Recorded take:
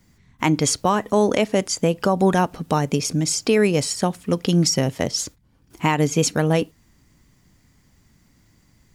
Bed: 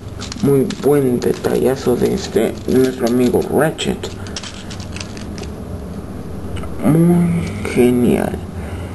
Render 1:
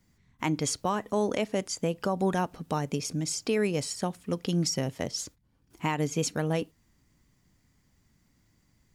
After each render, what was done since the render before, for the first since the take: trim -9.5 dB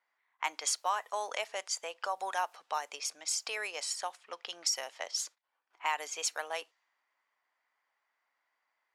high-pass 730 Hz 24 dB/octave; level-controlled noise filter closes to 1.9 kHz, open at -31 dBFS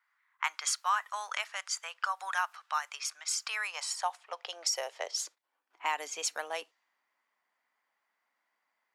high-pass sweep 1.3 kHz -> 200 Hz, 3.45–6.01 s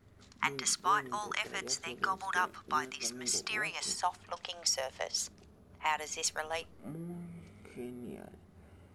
add bed -31.5 dB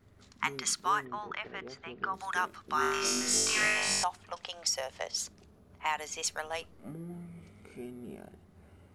1.05–2.14 s: distance through air 330 m; 2.76–4.04 s: flutter echo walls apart 3.5 m, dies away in 1.3 s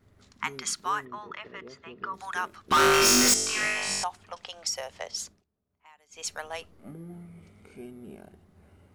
1.06–2.18 s: comb of notches 770 Hz; 2.71–3.34 s: waveshaping leveller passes 5; 5.24–6.29 s: dip -23.5 dB, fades 0.20 s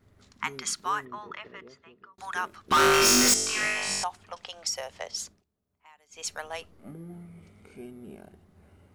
1.35–2.18 s: fade out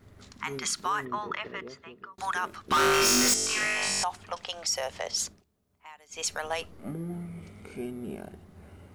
in parallel at -2 dB: gain riding within 4 dB 0.5 s; on the sum: peak limiter -19.5 dBFS, peak gain reduction 11 dB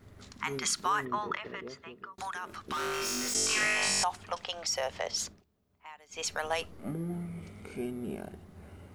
1.36–3.35 s: compression 4:1, threshold -35 dBFS; 4.43–6.38 s: peaking EQ 9.8 kHz -7 dB 1.3 oct

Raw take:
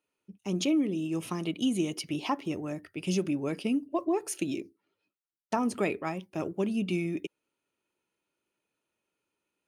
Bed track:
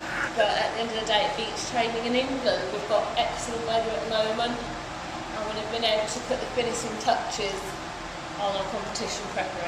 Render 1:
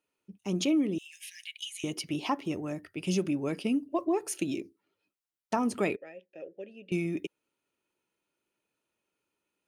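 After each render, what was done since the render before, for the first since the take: 0.98–1.84 s: brick-wall FIR high-pass 1.6 kHz; 5.96–6.92 s: vowel filter e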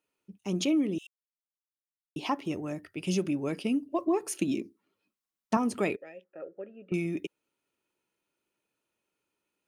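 1.07–2.16 s: mute; 4.06–5.57 s: small resonant body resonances 220/1100 Hz, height 9 dB; 6.24–6.94 s: resonant low-pass 1.3 kHz, resonance Q 6.5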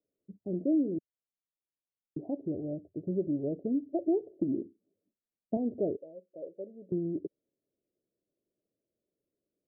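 steep low-pass 670 Hz 72 dB/octave; dynamic bell 200 Hz, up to -6 dB, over -43 dBFS, Q 2.8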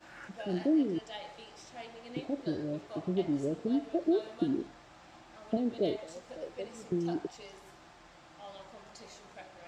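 add bed track -20.5 dB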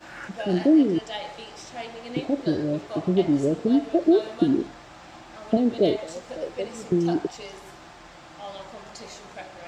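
trim +10 dB

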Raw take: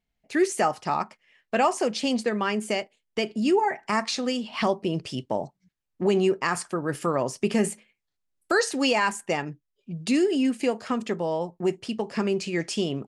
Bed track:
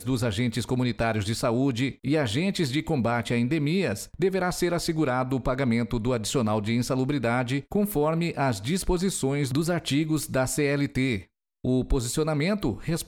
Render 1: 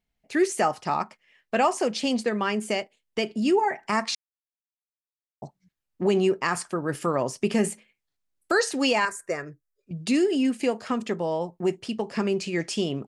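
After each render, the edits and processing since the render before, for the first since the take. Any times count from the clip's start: 4.15–5.42 s: mute; 9.05–9.91 s: static phaser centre 840 Hz, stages 6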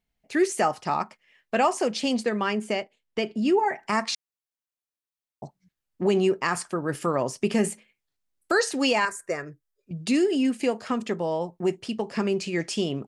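2.53–3.66 s: low-pass 3.9 kHz 6 dB/octave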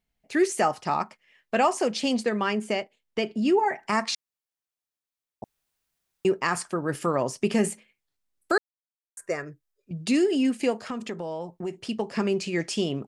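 5.44–6.25 s: room tone; 8.58–9.17 s: mute; 10.86–11.81 s: compression 2.5:1, threshold -31 dBFS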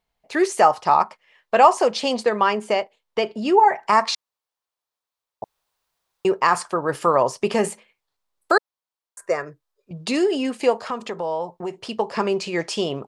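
graphic EQ 250/500/1000/4000 Hz -4/+6/+11/+5 dB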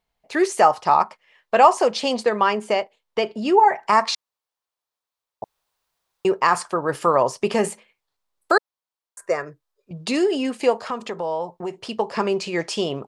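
no audible change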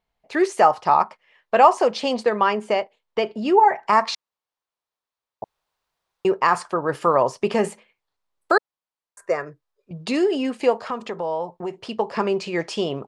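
treble shelf 5.7 kHz -9.5 dB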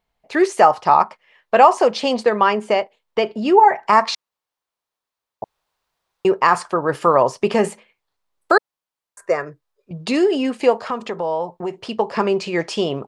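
trim +3.5 dB; peak limiter -1 dBFS, peak gain reduction 2 dB

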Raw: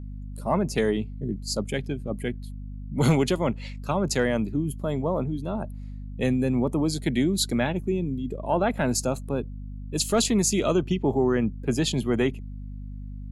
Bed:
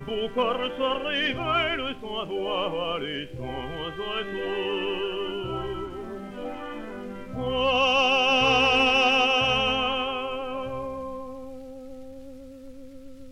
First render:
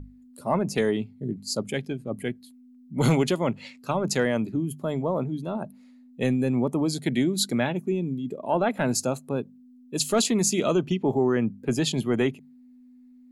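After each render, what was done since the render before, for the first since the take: hum notches 50/100/150/200 Hz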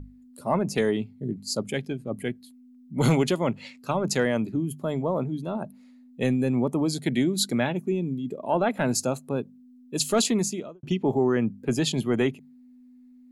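10.28–10.83 s: studio fade out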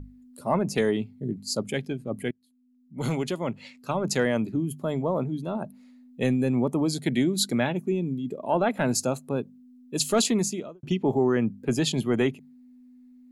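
2.31–4.28 s: fade in, from -22.5 dB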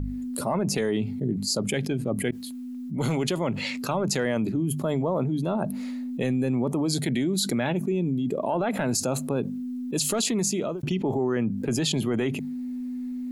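peak limiter -19 dBFS, peak gain reduction 8.5 dB; level flattener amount 70%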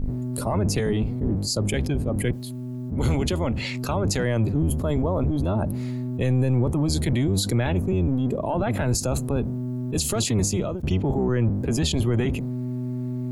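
octave divider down 1 oct, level +3 dB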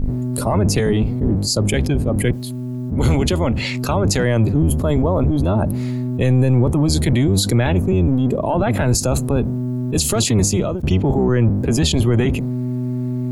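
trim +6.5 dB

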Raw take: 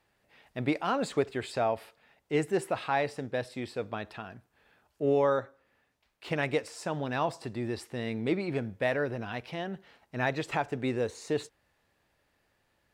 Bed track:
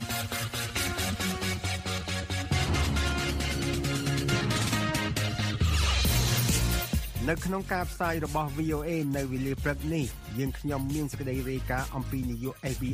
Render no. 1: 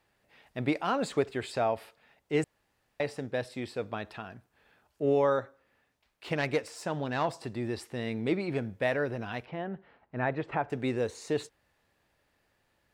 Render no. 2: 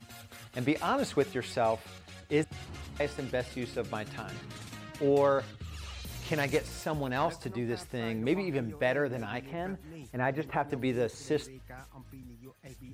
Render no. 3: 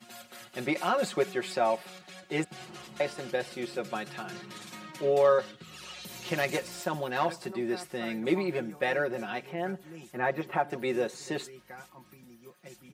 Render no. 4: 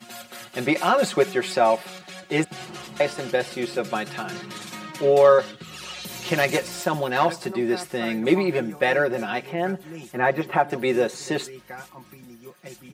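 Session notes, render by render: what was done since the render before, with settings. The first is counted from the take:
2.44–3.00 s: room tone; 6.36–7.28 s: self-modulated delay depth 0.069 ms; 9.45–10.70 s: low-pass 1.8 kHz
add bed track -17 dB
high-pass 210 Hz 12 dB/octave; comb 5.5 ms, depth 85%
trim +8 dB

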